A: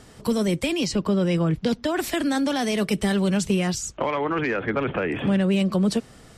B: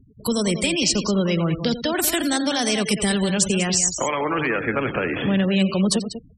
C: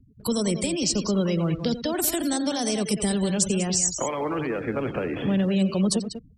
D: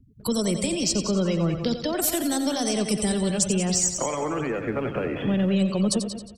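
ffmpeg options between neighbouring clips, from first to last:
-af "aecho=1:1:87.46|192.4:0.251|0.316,afftfilt=real='re*gte(hypot(re,im),0.0178)':imag='im*gte(hypot(re,im),0.0178)':win_size=1024:overlap=0.75,crystalizer=i=3.5:c=0"
-filter_complex "[0:a]acrossover=split=410|1000|4400[a][b][c][d];[b]aeval=exprs='sgn(val(0))*max(abs(val(0))-0.002,0)':c=same[e];[c]acompressor=threshold=-37dB:ratio=6[f];[a][e][f][d]amix=inputs=4:normalize=0,volume=-2.5dB"
-af "aecho=1:1:89|178|267|356|445|534|623:0.282|0.163|0.0948|0.055|0.0319|0.0185|0.0107,aeval=exprs='0.335*(cos(1*acos(clip(val(0)/0.335,-1,1)))-cos(1*PI/2))+0.00376*(cos(8*acos(clip(val(0)/0.335,-1,1)))-cos(8*PI/2))':c=same"

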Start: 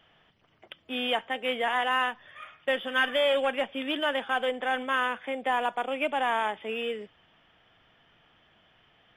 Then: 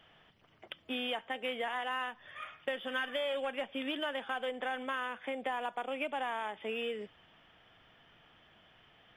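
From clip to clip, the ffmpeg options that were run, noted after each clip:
-af "acompressor=threshold=-34dB:ratio=4"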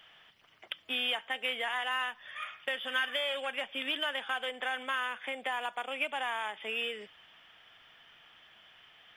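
-af "tiltshelf=f=810:g=-8"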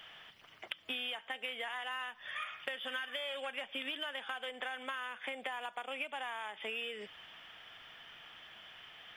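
-af "acompressor=threshold=-42dB:ratio=6,volume=4.5dB"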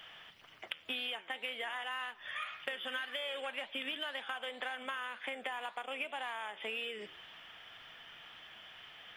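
-af "flanger=delay=5.9:depth=7.3:regen=89:speed=1.9:shape=triangular,volume=5dB"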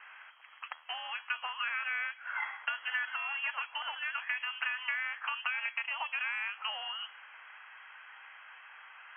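-af "aeval=exprs='0.1*(cos(1*acos(clip(val(0)/0.1,-1,1)))-cos(1*PI/2))+0.0316*(cos(5*acos(clip(val(0)/0.1,-1,1)))-cos(5*PI/2))+0.02*(cos(7*acos(clip(val(0)/0.1,-1,1)))-cos(7*PI/2))+0.00251*(cos(8*acos(clip(val(0)/0.1,-1,1)))-cos(8*PI/2))':c=same,lowpass=f=2.8k:t=q:w=0.5098,lowpass=f=2.8k:t=q:w=0.6013,lowpass=f=2.8k:t=q:w=0.9,lowpass=f=2.8k:t=q:w=2.563,afreqshift=-3300,highpass=f=920:w=0.5412,highpass=f=920:w=1.3066,volume=3.5dB"

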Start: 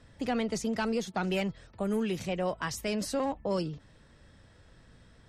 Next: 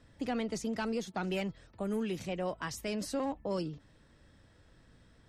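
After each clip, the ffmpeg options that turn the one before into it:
-af "equalizer=f=300:t=o:w=0.4:g=4,volume=-4.5dB"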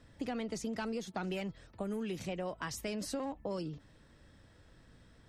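-af "acompressor=threshold=-35dB:ratio=6,volume=1dB"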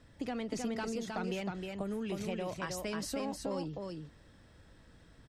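-af "aecho=1:1:313:0.631"

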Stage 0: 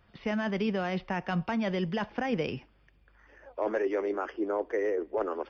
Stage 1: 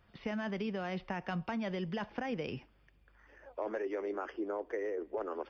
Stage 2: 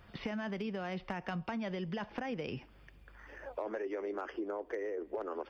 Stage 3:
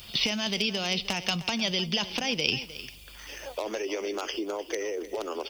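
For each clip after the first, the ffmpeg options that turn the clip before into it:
-af "acompressor=threshold=-30dB:ratio=6,volume=-3dB"
-af "volume=28dB,asoftclip=hard,volume=-28dB,acompressor=threshold=-47dB:ratio=3,volume=8.5dB"
-af "aexciter=amount=11.3:drive=5.6:freq=2.6k,aecho=1:1:307:0.178,volume=5.5dB"

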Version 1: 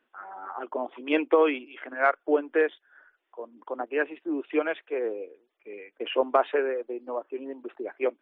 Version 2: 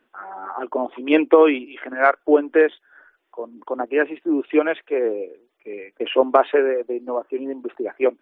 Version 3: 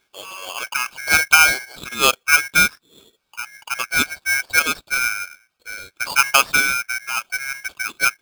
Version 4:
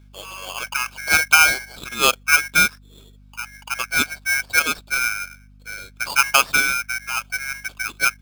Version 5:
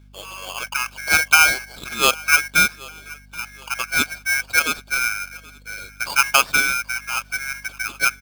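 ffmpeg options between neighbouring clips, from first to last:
-af "lowshelf=f=380:g=6.5,volume=5.5dB"
-af "aeval=exprs='val(0)*sgn(sin(2*PI*1900*n/s))':c=same"
-af "aeval=exprs='val(0)+0.00501*(sin(2*PI*50*n/s)+sin(2*PI*2*50*n/s)/2+sin(2*PI*3*50*n/s)/3+sin(2*PI*4*50*n/s)/4+sin(2*PI*5*50*n/s)/5)':c=same,volume=-1dB"
-af "aecho=1:1:777|1554|2331:0.0794|0.0342|0.0147"

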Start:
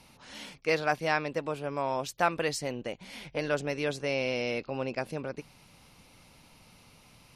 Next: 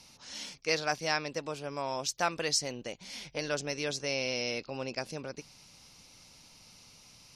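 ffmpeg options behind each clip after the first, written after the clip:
-af "equalizer=f=5.7k:w=1.1:g=14.5,volume=-4.5dB"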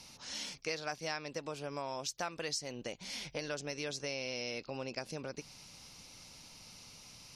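-af "acompressor=threshold=-40dB:ratio=3,volume=2dB"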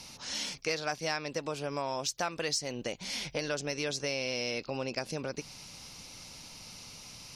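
-af "asoftclip=type=tanh:threshold=-23.5dB,volume=6dB"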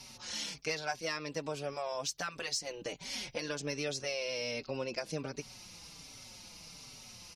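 -filter_complex "[0:a]asplit=2[a][b];[b]adelay=4.8,afreqshift=-1.3[c];[a][c]amix=inputs=2:normalize=1"

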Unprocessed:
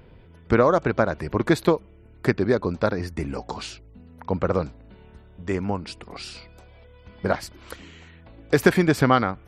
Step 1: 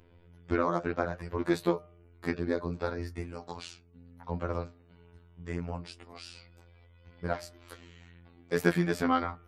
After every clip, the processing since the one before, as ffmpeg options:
-af "afftfilt=real='hypot(re,im)*cos(PI*b)':imag='0':win_size=2048:overlap=0.75,flanger=delay=8.5:depth=4.1:regen=-56:speed=0.65:shape=sinusoidal,bandreject=f=151.9:t=h:w=4,bandreject=f=303.8:t=h:w=4,bandreject=f=455.7:t=h:w=4,bandreject=f=607.6:t=h:w=4,bandreject=f=759.5:t=h:w=4,bandreject=f=911.4:t=h:w=4,bandreject=f=1.0633k:t=h:w=4,bandreject=f=1.2152k:t=h:w=4,bandreject=f=1.3671k:t=h:w=4,bandreject=f=1.519k:t=h:w=4,bandreject=f=1.6709k:t=h:w=4,bandreject=f=1.8228k:t=h:w=4,volume=-2dB"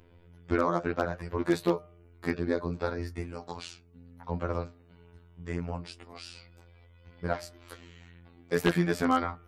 -af "aeval=exprs='0.224*(abs(mod(val(0)/0.224+3,4)-2)-1)':c=same,volume=1.5dB"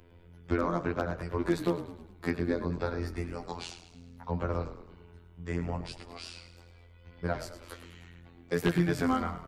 -filter_complex "[0:a]acrossover=split=250[a][b];[b]acompressor=threshold=-32dB:ratio=2[c];[a][c]amix=inputs=2:normalize=0,asplit=2[d][e];[e]asplit=5[f][g][h][i][j];[f]adelay=105,afreqshift=-37,volume=-12dB[k];[g]adelay=210,afreqshift=-74,volume=-17.7dB[l];[h]adelay=315,afreqshift=-111,volume=-23.4dB[m];[i]adelay=420,afreqshift=-148,volume=-29dB[n];[j]adelay=525,afreqshift=-185,volume=-34.7dB[o];[k][l][m][n][o]amix=inputs=5:normalize=0[p];[d][p]amix=inputs=2:normalize=0,volume=1dB"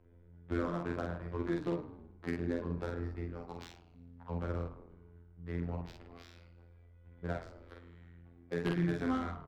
-filter_complex "[0:a]adynamicsmooth=sensitivity=4:basefreq=1.5k,asplit=2[a][b];[b]adelay=47,volume=-3dB[c];[a][c]amix=inputs=2:normalize=0,volume=-7.5dB"

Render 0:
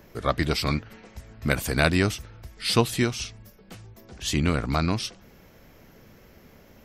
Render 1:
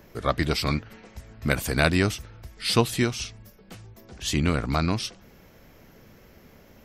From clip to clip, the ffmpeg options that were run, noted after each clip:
-af anull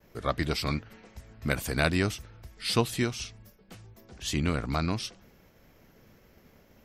-af "agate=range=-33dB:threshold=-49dB:ratio=3:detection=peak,volume=-4.5dB"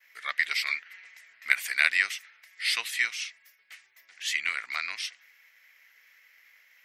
-af "highpass=f=2k:t=q:w=4.9"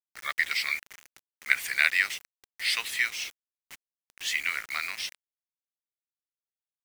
-af "acrusher=bits=6:mix=0:aa=0.000001"

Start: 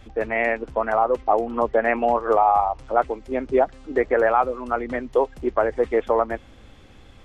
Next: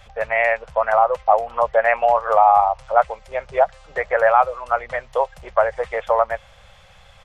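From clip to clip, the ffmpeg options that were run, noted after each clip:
-af "firequalizer=gain_entry='entry(180,0);entry(260,-30);entry(550,7)':delay=0.05:min_phase=1,volume=-2.5dB"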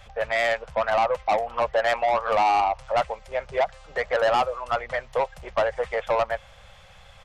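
-af "asoftclip=type=tanh:threshold=-15.5dB,volume=-1dB"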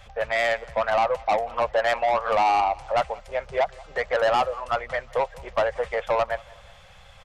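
-af "aecho=1:1:182|364|546:0.0708|0.0304|0.0131"

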